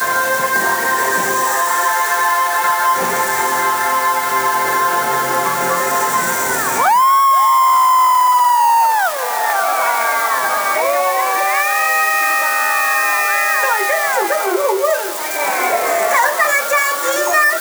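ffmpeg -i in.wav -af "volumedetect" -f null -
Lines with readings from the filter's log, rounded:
mean_volume: -14.9 dB
max_volume: -2.6 dB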